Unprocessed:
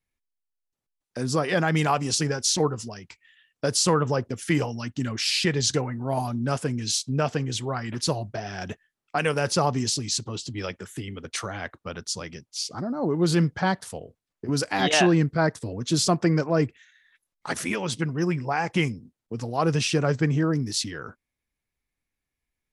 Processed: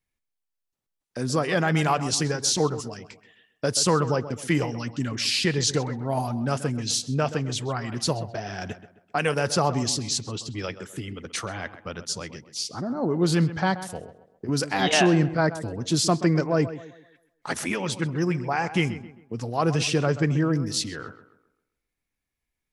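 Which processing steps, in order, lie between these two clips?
tape echo 0.13 s, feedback 42%, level -12 dB, low-pass 2200 Hz

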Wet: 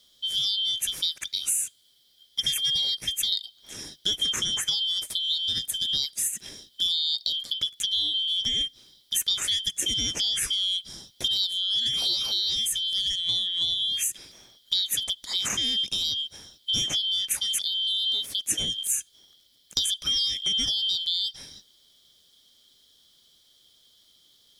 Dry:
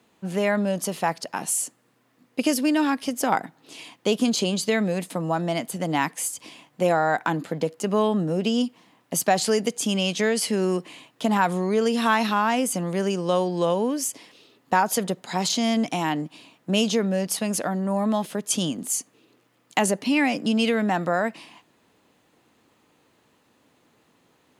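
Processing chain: four-band scrambler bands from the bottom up 3412; high shelf 7200 Hz +7.5 dB; compressor 2.5:1, threshold -27 dBFS, peak gain reduction 9.5 dB; bell 980 Hz -9.5 dB 1.1 oct; gain +1.5 dB

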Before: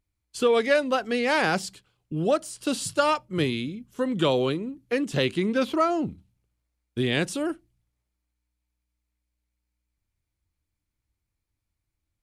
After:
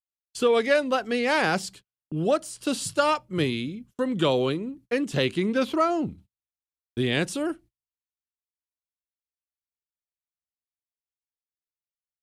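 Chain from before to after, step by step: gate -48 dBFS, range -35 dB

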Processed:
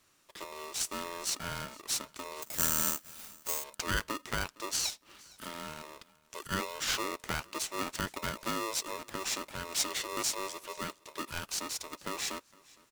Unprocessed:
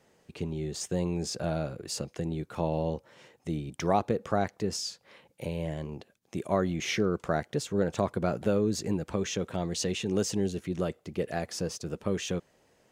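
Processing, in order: tilt +3 dB/oct; on a send: feedback echo 0.462 s, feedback 34%, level -24 dB; 2.42–3.64 on the sum: careless resampling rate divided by 6×, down none, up zero stuff; polarity switched at an audio rate 770 Hz; gain -4.5 dB

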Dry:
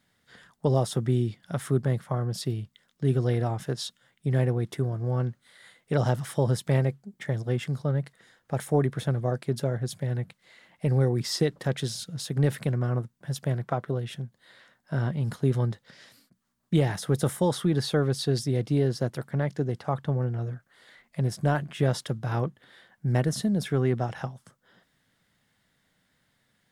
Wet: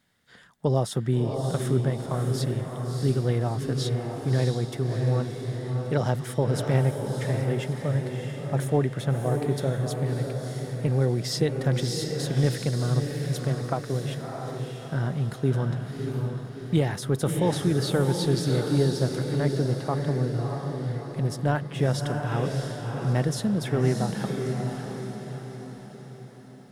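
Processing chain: diffused feedback echo 0.651 s, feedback 50%, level -4 dB

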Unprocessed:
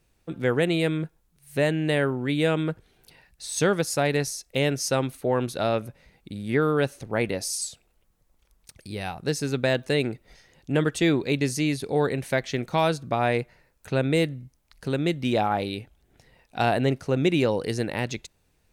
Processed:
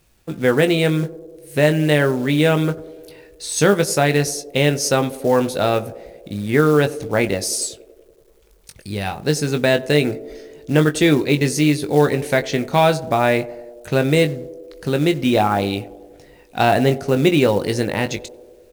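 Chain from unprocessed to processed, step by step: doubler 20 ms -8 dB; companded quantiser 6-bit; narrowing echo 95 ms, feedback 78%, band-pass 440 Hz, level -16 dB; gain +6.5 dB

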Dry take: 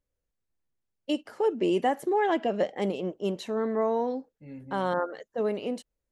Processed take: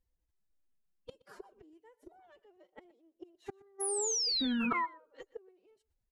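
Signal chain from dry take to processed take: low shelf 78 Hz +9.5 dB; flipped gate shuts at -25 dBFS, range -32 dB; painted sound fall, 3.8–4.86, 1000–6100 Hz -28 dBFS; formant-preserving pitch shift +10 st; echo 0.121 s -22 dB; gain -3 dB

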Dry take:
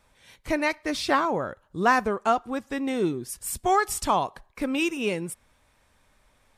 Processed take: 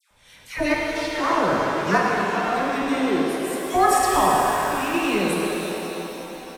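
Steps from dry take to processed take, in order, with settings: in parallel at -3 dB: limiter -15.5 dBFS, peak gain reduction 8 dB; 2.96–3.61 on the sum: HPF 340 Hz 6 dB/oct; dispersion lows, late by 0.108 s, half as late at 1400 Hz; speakerphone echo 0.11 s, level -6 dB; chopper 0.81 Hz, depth 65%, duty 60%; shimmer reverb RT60 3.8 s, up +7 st, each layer -8 dB, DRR -2.5 dB; gain -3 dB

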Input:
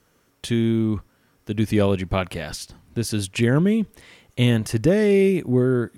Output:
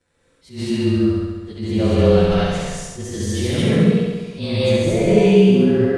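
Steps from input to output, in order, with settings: inharmonic rescaling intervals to 109%; elliptic low-pass 10000 Hz, stop band 70 dB; flutter echo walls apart 11.6 m, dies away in 1.3 s; non-linear reverb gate 0.26 s rising, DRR -7 dB; attack slew limiter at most 170 dB/s; gain -3 dB

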